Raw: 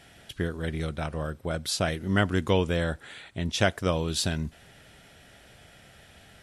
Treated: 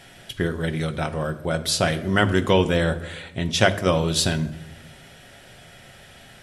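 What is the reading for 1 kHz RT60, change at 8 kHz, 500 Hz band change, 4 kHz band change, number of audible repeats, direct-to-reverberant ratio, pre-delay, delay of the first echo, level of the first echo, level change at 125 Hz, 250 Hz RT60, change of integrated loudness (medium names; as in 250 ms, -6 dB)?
0.90 s, +6.5 dB, +6.5 dB, +6.5 dB, no echo, 8.0 dB, 5 ms, no echo, no echo, +5.0 dB, 1.4 s, +6.0 dB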